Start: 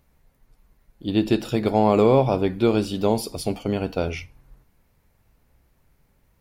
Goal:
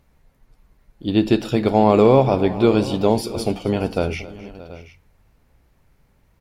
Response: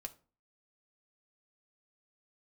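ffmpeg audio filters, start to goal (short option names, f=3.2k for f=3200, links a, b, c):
-af "highshelf=f=9.8k:g=-8.5,aecho=1:1:262|623|730:0.119|0.112|0.126,volume=3.5dB"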